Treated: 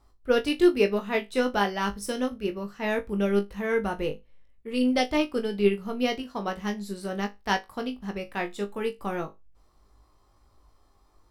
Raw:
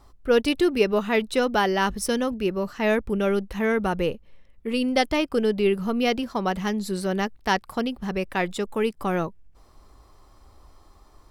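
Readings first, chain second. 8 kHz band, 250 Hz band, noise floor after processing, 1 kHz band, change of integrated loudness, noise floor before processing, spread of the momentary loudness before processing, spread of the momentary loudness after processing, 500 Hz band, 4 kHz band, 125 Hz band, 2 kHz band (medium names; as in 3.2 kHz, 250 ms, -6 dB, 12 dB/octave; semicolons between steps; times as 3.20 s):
-6.0 dB, -2.5 dB, -62 dBFS, -4.0 dB, -3.0 dB, -54 dBFS, 6 LU, 10 LU, -3.0 dB, -3.5 dB, -4.5 dB, -3.5 dB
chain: flutter echo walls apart 3.4 m, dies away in 0.21 s; upward expansion 1.5:1, over -30 dBFS; trim -1.5 dB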